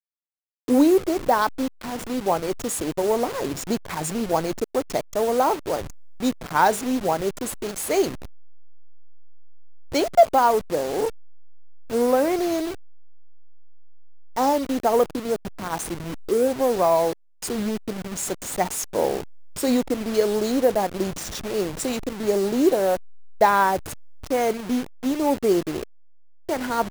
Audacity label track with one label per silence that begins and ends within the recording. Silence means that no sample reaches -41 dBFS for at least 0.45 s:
25.830000	26.490000	silence